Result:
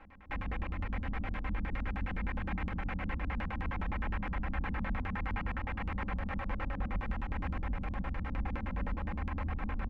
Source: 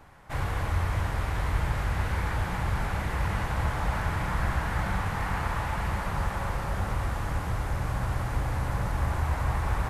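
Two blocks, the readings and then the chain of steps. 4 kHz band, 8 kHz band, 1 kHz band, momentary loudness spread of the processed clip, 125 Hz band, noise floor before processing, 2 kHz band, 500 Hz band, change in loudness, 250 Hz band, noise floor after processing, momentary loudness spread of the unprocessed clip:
−11.5 dB, below −25 dB, −9.5 dB, 2 LU, −10.0 dB, −33 dBFS, −7.0 dB, −9.5 dB, −8.0 dB, −2.5 dB, −40 dBFS, 2 LU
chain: sub-octave generator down 1 octave, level −3 dB
brickwall limiter −25 dBFS, peak gain reduction 11 dB
comb filter 3.8 ms, depth 89%
delay with a low-pass on its return 140 ms, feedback 70%, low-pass 1,000 Hz, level −6.5 dB
auto-filter low-pass square 9.7 Hz 210–2,400 Hz
level −7 dB

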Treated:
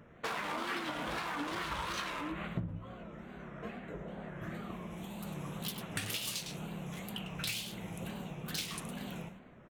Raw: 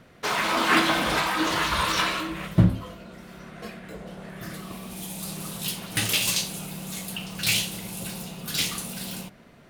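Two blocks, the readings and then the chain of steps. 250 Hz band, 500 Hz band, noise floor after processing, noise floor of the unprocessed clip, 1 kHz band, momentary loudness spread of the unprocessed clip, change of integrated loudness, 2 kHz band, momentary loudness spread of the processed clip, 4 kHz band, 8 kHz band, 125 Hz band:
−11.5 dB, −10.5 dB, −54 dBFS, −52 dBFS, −12.5 dB, 18 LU, −14.5 dB, −13.5 dB, 8 LU, −14.0 dB, −15.0 dB, −13.0 dB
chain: adaptive Wiener filter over 9 samples
single-tap delay 103 ms −11 dB
tape wow and flutter 140 cents
downward compressor 12 to 1, threshold −30 dBFS, peak gain reduction 18.5 dB
level −4 dB

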